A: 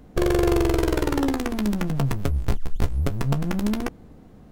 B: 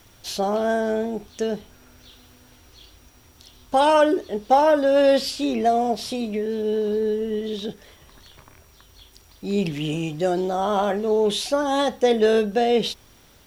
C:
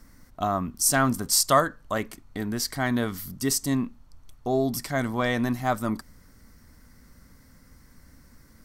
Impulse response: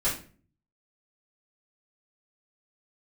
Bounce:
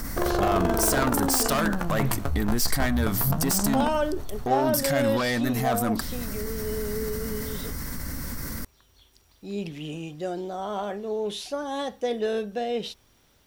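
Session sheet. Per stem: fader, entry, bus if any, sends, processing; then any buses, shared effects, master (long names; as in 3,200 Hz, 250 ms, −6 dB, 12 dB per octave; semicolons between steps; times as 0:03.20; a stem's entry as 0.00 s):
−3.5 dB, 0.00 s, no send, flat-topped bell 990 Hz +9 dB; brickwall limiter −11 dBFS, peak gain reduction 7 dB
−9.0 dB, 0.00 s, no send, no processing
−0.5 dB, 0.00 s, no send, soft clipping −25 dBFS, distortion −7 dB; high-shelf EQ 12,000 Hz +11 dB; envelope flattener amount 70%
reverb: not used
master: no processing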